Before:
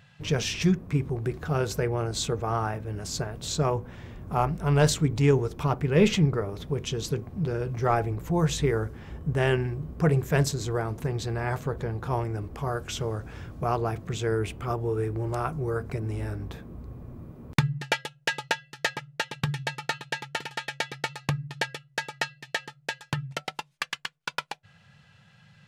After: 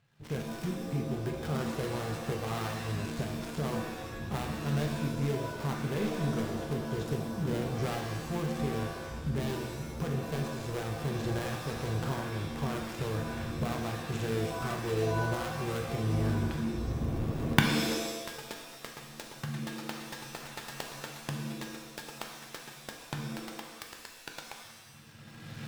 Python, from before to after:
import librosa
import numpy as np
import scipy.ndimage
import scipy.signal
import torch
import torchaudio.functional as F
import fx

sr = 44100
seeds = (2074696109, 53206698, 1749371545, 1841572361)

y = fx.dead_time(x, sr, dead_ms=0.22)
y = fx.recorder_agc(y, sr, target_db=-11.0, rise_db_per_s=20.0, max_gain_db=30)
y = fx.rev_shimmer(y, sr, seeds[0], rt60_s=1.1, semitones=7, shimmer_db=-2, drr_db=2.5)
y = F.gain(torch.from_numpy(y), -15.0).numpy()